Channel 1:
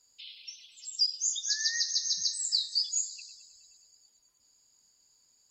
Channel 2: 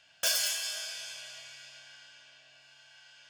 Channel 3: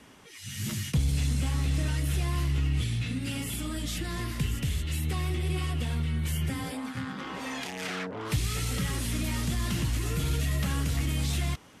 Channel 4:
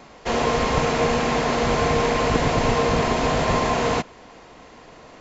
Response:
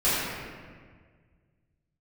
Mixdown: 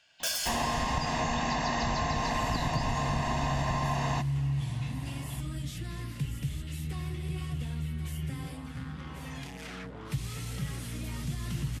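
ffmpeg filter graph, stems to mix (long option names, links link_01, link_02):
-filter_complex "[0:a]lowpass=3300,volume=-3dB[link_01];[1:a]volume=-2.5dB[link_02];[2:a]equalizer=frequency=140:width=4.2:gain=12.5,aeval=exprs='val(0)+0.01*(sin(2*PI*60*n/s)+sin(2*PI*2*60*n/s)/2+sin(2*PI*3*60*n/s)/3+sin(2*PI*4*60*n/s)/4+sin(2*PI*5*60*n/s)/5)':channel_layout=same,adelay=1800,volume=-9dB,asplit=2[link_03][link_04];[link_04]volume=-9.5dB[link_05];[3:a]aecho=1:1:1.1:0.77,adelay=200,volume=-6.5dB[link_06];[link_05]aecho=0:1:1087:1[link_07];[link_01][link_02][link_03][link_06][link_07]amix=inputs=5:normalize=0,acompressor=threshold=-26dB:ratio=6"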